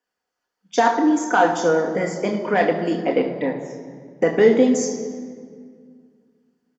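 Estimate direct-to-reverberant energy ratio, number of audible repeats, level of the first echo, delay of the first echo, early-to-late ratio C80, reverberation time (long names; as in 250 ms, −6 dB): 2.0 dB, 1, −14.5 dB, 75 ms, 9.0 dB, 2.0 s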